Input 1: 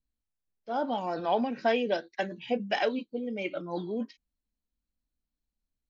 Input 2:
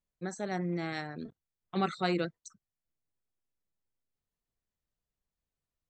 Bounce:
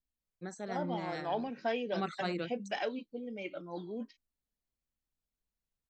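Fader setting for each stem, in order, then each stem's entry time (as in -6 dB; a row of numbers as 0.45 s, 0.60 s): -7.5 dB, -5.5 dB; 0.00 s, 0.20 s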